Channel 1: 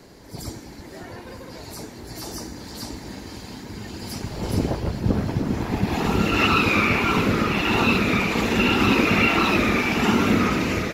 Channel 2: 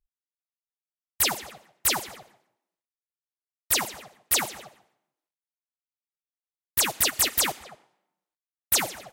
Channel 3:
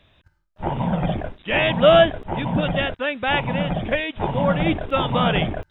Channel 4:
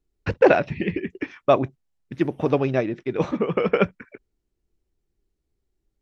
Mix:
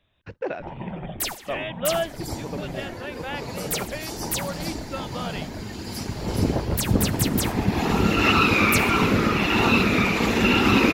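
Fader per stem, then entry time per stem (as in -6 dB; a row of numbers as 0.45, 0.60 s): +0.5, -5.0, -12.0, -14.5 dB; 1.85, 0.00, 0.00, 0.00 s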